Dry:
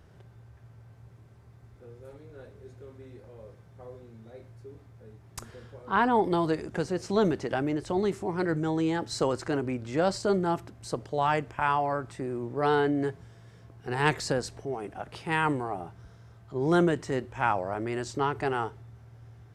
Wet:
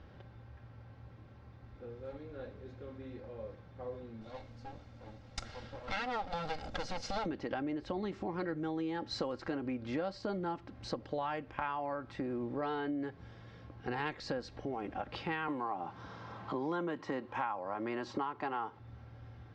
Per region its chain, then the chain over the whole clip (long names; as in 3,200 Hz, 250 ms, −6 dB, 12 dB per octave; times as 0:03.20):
0:04.21–0:07.26: lower of the sound and its delayed copy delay 1.4 ms + bass and treble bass 0 dB, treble +12 dB
0:15.48–0:18.79: high-pass filter 140 Hz + parametric band 1,000 Hz +9.5 dB 0.55 octaves + multiband upward and downward compressor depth 40%
whole clip: low-pass filter 4,600 Hz 24 dB per octave; comb filter 3.7 ms, depth 46%; downward compressor 6 to 1, threshold −36 dBFS; level +1.5 dB